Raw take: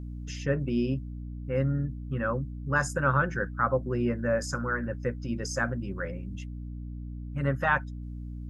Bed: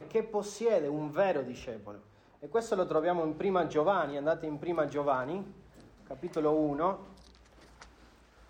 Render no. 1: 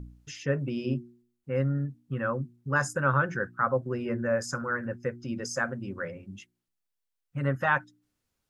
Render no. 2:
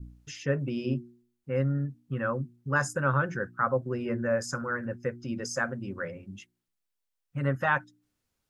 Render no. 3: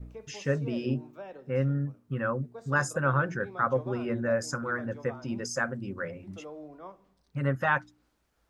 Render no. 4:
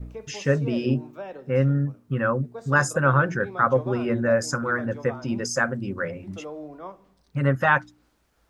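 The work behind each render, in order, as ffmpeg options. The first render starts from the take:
-af "bandreject=f=60:t=h:w=4,bandreject=f=120:t=h:w=4,bandreject=f=180:t=h:w=4,bandreject=f=240:t=h:w=4,bandreject=f=300:t=h:w=4,bandreject=f=360:t=h:w=4"
-af "adynamicequalizer=threshold=0.0141:dfrequency=1400:dqfactor=0.72:tfrequency=1400:tqfactor=0.72:attack=5:release=100:ratio=0.375:range=2:mode=cutabove:tftype=bell"
-filter_complex "[1:a]volume=-15.5dB[a];[0:a][a]amix=inputs=2:normalize=0"
-af "volume=6.5dB"

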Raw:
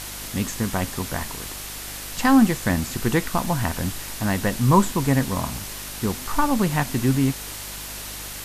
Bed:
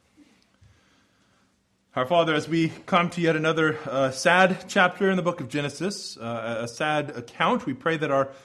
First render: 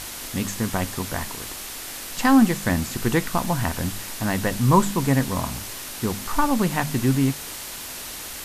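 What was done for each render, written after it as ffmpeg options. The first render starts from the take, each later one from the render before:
-af "bandreject=f=50:t=h:w=4,bandreject=f=100:t=h:w=4,bandreject=f=150:t=h:w=4,bandreject=f=200:t=h:w=4"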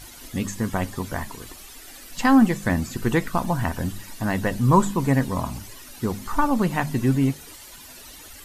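-af "afftdn=nr=13:nf=-35"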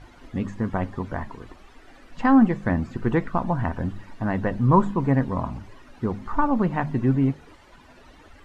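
-af "lowpass=1.5k,aemphasis=mode=production:type=cd"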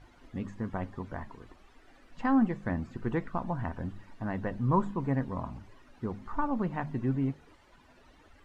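-af "volume=-9dB"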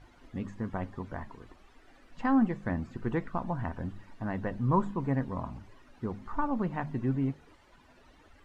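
-af anull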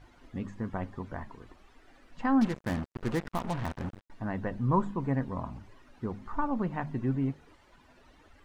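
-filter_complex "[0:a]asettb=1/sr,asplit=3[a][b][c];[a]atrim=end=2.414[d];[b]atrim=start=2.41:end=4.1,asetpts=PTS-STARTPTS,afade=t=in:d=0.004:c=qsin,afade=t=out:st=1.686:d=0.004:c=qsin,acrusher=bits=5:mix=0:aa=0.5[e];[c]atrim=start=4.096[f];[d][e]acrossfade=d=0.004:c1=hsin:c2=qsin[g];[g][f]acrossfade=d=0.004:c1=qsin:c2=hsin"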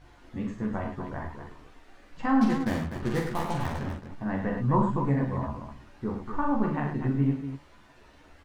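-filter_complex "[0:a]asplit=2[a][b];[b]adelay=14,volume=-4dB[c];[a][c]amix=inputs=2:normalize=0,aecho=1:1:42|67|103|247:0.596|0.251|0.422|0.376"

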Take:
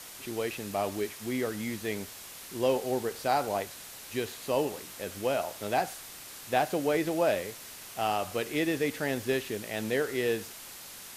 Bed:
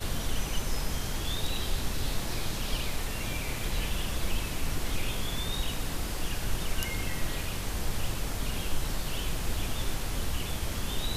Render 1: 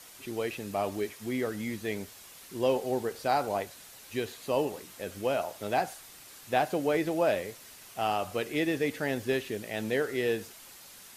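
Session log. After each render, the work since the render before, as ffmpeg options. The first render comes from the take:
-af "afftdn=nr=6:nf=-46"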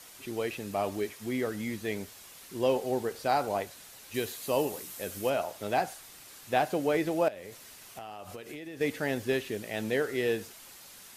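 -filter_complex "[0:a]asettb=1/sr,asplit=3[a][b][c];[a]atrim=end=4.144[d];[b]atrim=start=4.14:end=5.3,asetpts=PTS-STARTPTS,afade=t=in:d=0.004:c=qsin,afade=t=out:st=1.156:d=0.004:c=qsin,highshelf=f=7.1k:g=11[e];[c]atrim=start=5.296[f];[d][e]acrossfade=d=0.004:c1=hsin:c2=qsin[g];[g][f]acrossfade=d=0.004:c1=qsin:c2=hsin,asettb=1/sr,asplit=3[h][i][j];[h]atrim=end=7.284[k];[i]atrim=start=7.28:end=8.81,asetpts=PTS-STARTPTS,afade=t=in:d=0.004:c=qsin,afade=t=out:st=1.526:d=0.004:c=qsin,acompressor=threshold=-38dB:ratio=20:attack=3.2:release=140:knee=1:detection=peak[l];[j]atrim=start=8.806[m];[k][l]acrossfade=d=0.004:c1=hsin:c2=qsin[n];[n][m]acrossfade=d=0.004:c1=qsin:c2=hsin"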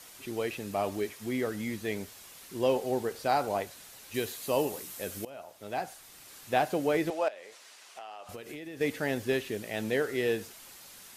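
-filter_complex "[0:a]asettb=1/sr,asplit=3[a][b][c];[a]atrim=end=7.104[d];[b]atrim=start=7.1:end=8.29,asetpts=PTS-STARTPTS,afade=t=in:d=0.004:c=qsin,afade=t=out:st=1.186:d=0.004:c=qsin,highpass=550,lowpass=7.4k[e];[c]atrim=start=8.286[f];[d][e]acrossfade=d=0.004:c1=hsin:c2=qsin[g];[g][f]acrossfade=d=0.004:c1=qsin:c2=hsin,asplit=2[h][i];[h]atrim=end=5.25,asetpts=PTS-STARTPTS,afade=t=out:st=5.246:d=0.004:c=hsin:silence=0.0841395[j];[i]atrim=start=5.25,asetpts=PTS-STARTPTS,afade=t=in:d=1.13:silence=0.0841395[k];[j][k]concat=n=2:v=0:a=1"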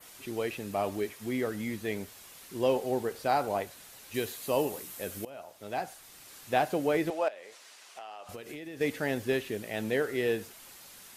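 -af "adynamicequalizer=threshold=0.00251:dfrequency=5600:dqfactor=0.95:tfrequency=5600:tqfactor=0.95:attack=5:release=100:ratio=0.375:range=1.5:mode=cutabove:tftype=bell"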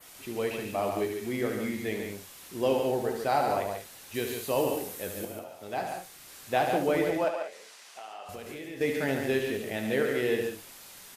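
-filter_complex "[0:a]asplit=2[a][b];[b]adelay=22,volume=-11dB[c];[a][c]amix=inputs=2:normalize=0,aecho=1:1:72.89|142.9|192.4:0.447|0.501|0.251"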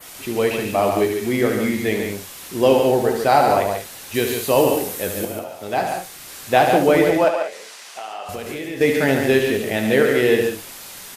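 -af "volume=11.5dB"

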